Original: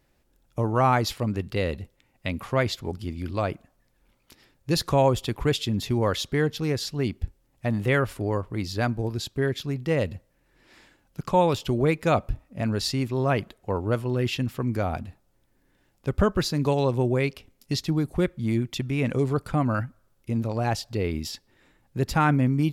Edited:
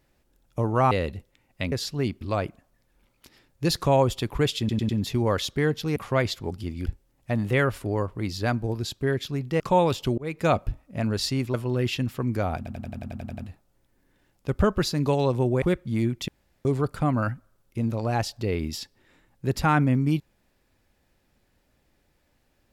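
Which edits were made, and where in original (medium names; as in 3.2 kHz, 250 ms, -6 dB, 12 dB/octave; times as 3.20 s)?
0.91–1.56 s: delete
2.37–3.27 s: swap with 6.72–7.21 s
5.65 s: stutter 0.10 s, 4 plays
9.95–11.22 s: delete
11.80–12.07 s: fade in
13.16–13.94 s: delete
14.97 s: stutter 0.09 s, 10 plays
17.21–18.14 s: delete
18.80–19.17 s: room tone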